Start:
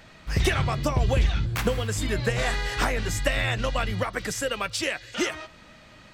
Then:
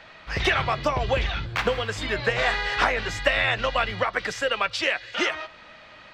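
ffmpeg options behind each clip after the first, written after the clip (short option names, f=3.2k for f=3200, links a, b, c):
-filter_complex "[0:a]acrossover=split=460 4800:gain=0.251 1 0.0794[a][b][c];[a][b][c]amix=inputs=3:normalize=0,volume=5.5dB"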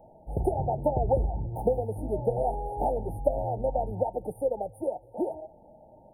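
-af "afftfilt=real='re*(1-between(b*sr/4096,920,8900))':imag='im*(1-between(b*sr/4096,920,8900))':win_size=4096:overlap=0.75"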